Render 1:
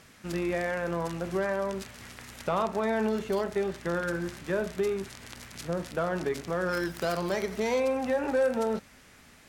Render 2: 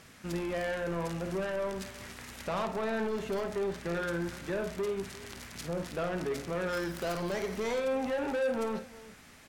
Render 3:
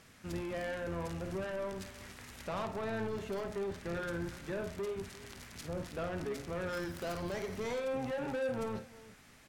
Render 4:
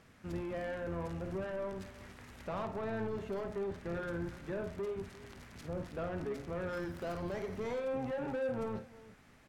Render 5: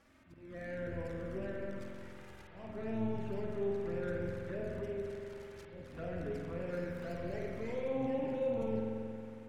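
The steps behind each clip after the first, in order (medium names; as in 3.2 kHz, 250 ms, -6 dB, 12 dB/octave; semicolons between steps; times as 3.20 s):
saturation -28.5 dBFS, distortion -10 dB; on a send: multi-tap echo 53/348 ms -10.5/-18.5 dB
octave divider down 1 oct, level -5 dB; trim -5 dB
treble shelf 2.7 kHz -10.5 dB
touch-sensitive flanger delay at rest 3.8 ms, full sweep at -33.5 dBFS; slow attack 310 ms; spring tank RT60 2.7 s, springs 45 ms, chirp 70 ms, DRR -1 dB; trim -2 dB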